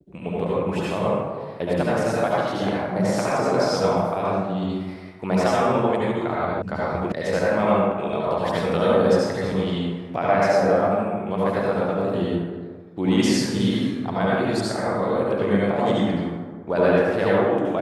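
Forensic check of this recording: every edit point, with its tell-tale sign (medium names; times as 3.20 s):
6.62 s: sound stops dead
7.12 s: sound stops dead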